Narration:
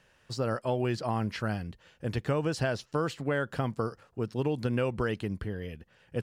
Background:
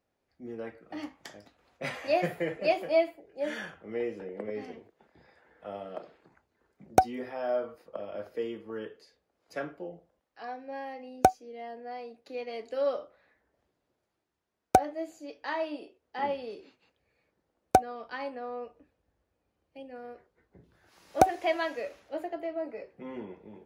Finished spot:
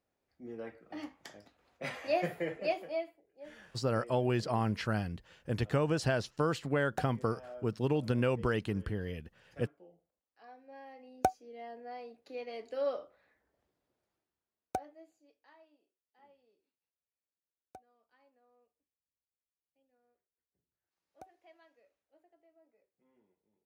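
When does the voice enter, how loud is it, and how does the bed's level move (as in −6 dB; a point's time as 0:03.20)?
3.45 s, −1.0 dB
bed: 0:02.58 −4 dB
0:03.30 −17.5 dB
0:10.17 −17.5 dB
0:11.59 −4.5 dB
0:14.14 −4.5 dB
0:15.76 −32.5 dB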